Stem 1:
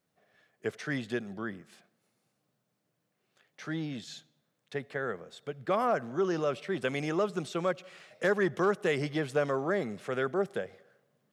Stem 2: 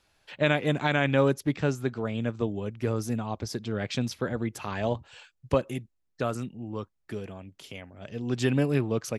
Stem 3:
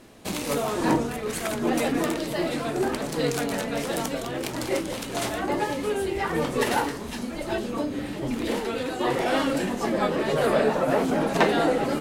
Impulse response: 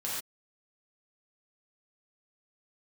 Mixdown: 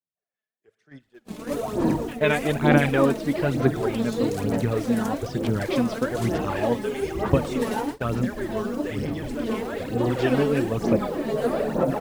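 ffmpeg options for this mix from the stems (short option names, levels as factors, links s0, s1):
-filter_complex "[0:a]alimiter=limit=0.0708:level=0:latency=1:release=34,acontrast=81,volume=0.237,asplit=2[s0][s1];[s1]volume=0.237[s2];[1:a]lowpass=2700,adelay=1800,volume=1.19[s3];[2:a]tiltshelf=f=970:g=6,acrusher=bits=7:mix=0:aa=0.000001,adelay=1000,volume=0.422,asplit=2[s4][s5];[s5]volume=0.224[s6];[3:a]atrim=start_sample=2205[s7];[s2][s7]afir=irnorm=-1:irlink=0[s8];[s6]aecho=0:1:114:1[s9];[s0][s3][s4][s8][s9]amix=inputs=5:normalize=0,agate=range=0.0562:threshold=0.0224:ratio=16:detection=peak,aphaser=in_gain=1:out_gain=1:delay=4.7:decay=0.57:speed=1.1:type=sinusoidal,adynamicequalizer=threshold=0.01:dfrequency=3300:dqfactor=0.7:tfrequency=3300:tqfactor=0.7:attack=5:release=100:ratio=0.375:range=2:mode=boostabove:tftype=highshelf"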